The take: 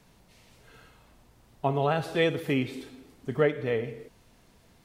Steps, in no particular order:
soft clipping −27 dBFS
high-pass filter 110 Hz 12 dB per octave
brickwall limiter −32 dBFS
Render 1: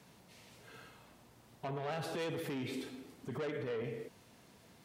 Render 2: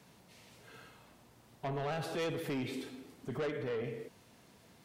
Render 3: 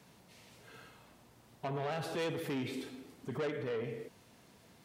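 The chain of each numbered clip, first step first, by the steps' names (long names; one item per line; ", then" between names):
soft clipping, then high-pass filter, then brickwall limiter
high-pass filter, then soft clipping, then brickwall limiter
soft clipping, then brickwall limiter, then high-pass filter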